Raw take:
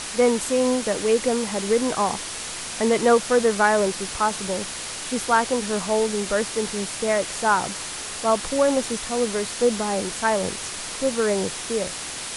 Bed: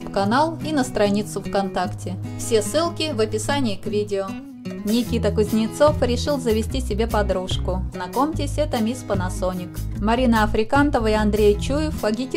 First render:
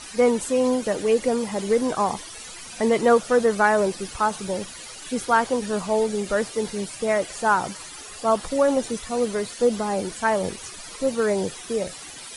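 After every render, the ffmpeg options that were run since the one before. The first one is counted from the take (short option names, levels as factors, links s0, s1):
-af "afftdn=nr=14:nf=-33"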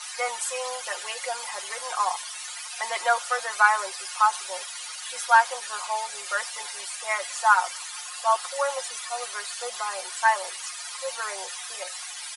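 -af "highpass=f=820:w=0.5412,highpass=f=820:w=1.3066,aecho=1:1:5.6:0.9"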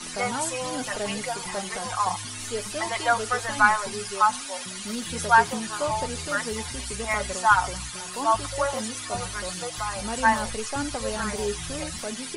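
-filter_complex "[1:a]volume=0.224[s0];[0:a][s0]amix=inputs=2:normalize=0"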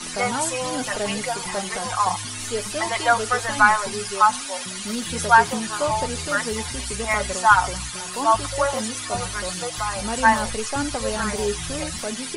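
-af "volume=1.58,alimiter=limit=0.794:level=0:latency=1"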